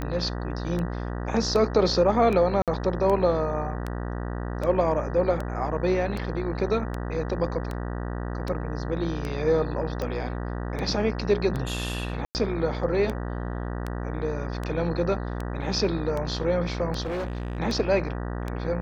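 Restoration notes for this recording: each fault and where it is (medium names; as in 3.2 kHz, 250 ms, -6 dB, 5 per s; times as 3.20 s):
buzz 60 Hz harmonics 32 -31 dBFS
tick 78 rpm -18 dBFS
2.62–2.68 s: dropout 57 ms
12.25–12.35 s: dropout 99 ms
17.01–17.60 s: clipped -26.5 dBFS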